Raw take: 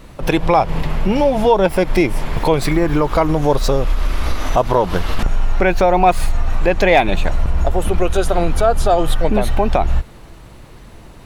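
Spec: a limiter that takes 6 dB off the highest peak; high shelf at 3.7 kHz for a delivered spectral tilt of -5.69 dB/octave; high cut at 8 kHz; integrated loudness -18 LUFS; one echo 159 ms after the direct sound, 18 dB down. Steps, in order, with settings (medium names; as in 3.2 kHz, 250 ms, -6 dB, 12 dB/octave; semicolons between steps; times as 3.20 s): low-pass 8 kHz; treble shelf 3.7 kHz -3 dB; peak limiter -8 dBFS; delay 159 ms -18 dB; trim +2 dB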